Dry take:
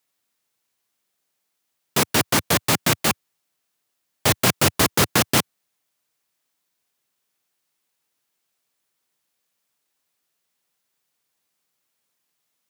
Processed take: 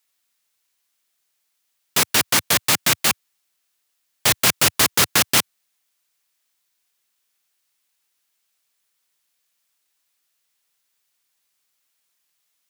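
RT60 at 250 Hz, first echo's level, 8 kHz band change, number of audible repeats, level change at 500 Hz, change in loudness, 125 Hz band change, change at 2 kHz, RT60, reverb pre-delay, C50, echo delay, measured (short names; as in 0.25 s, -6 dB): none, none, +4.0 dB, none, -4.0 dB, +2.5 dB, -6.5 dB, +2.5 dB, none, none, none, none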